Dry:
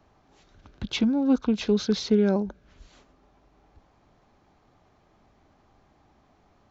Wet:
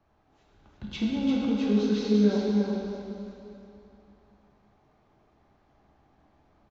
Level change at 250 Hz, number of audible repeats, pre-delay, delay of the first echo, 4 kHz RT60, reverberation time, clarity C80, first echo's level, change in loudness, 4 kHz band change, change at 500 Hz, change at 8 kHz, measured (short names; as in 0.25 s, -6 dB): -0.5 dB, 1, 5 ms, 0.344 s, 2.6 s, 2.8 s, -2.0 dB, -3.5 dB, -2.0 dB, -5.0 dB, -2.0 dB, n/a